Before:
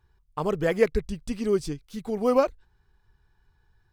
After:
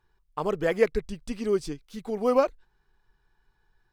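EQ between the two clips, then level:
parametric band 81 Hz −13 dB 1.6 octaves
high-shelf EQ 6,100 Hz −4 dB
0.0 dB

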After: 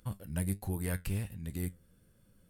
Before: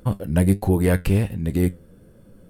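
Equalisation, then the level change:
dynamic equaliser 3,100 Hz, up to −5 dB, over −45 dBFS, Q 0.71
guitar amp tone stack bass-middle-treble 5-5-5
0.0 dB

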